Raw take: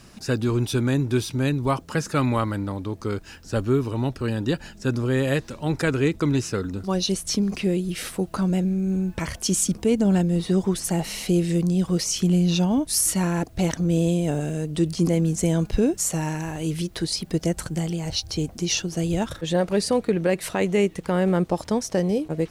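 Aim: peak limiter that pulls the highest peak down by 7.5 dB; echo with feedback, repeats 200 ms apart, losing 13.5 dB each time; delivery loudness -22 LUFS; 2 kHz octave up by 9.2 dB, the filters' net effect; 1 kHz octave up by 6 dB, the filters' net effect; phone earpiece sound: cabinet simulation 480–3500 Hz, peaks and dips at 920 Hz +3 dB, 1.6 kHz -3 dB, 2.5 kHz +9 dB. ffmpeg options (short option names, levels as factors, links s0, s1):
-af "equalizer=f=1000:t=o:g=4.5,equalizer=f=2000:t=o:g=7.5,alimiter=limit=0.224:level=0:latency=1,highpass=480,equalizer=f=920:t=q:w=4:g=3,equalizer=f=1600:t=q:w=4:g=-3,equalizer=f=2500:t=q:w=4:g=9,lowpass=f=3500:w=0.5412,lowpass=f=3500:w=1.3066,aecho=1:1:200|400:0.211|0.0444,volume=2.11"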